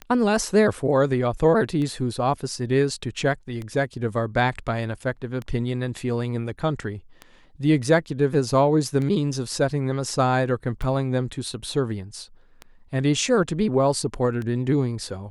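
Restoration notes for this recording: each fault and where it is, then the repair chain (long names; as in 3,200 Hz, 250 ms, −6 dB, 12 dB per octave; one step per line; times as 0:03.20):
scratch tick 33 1/3 rpm −20 dBFS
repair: click removal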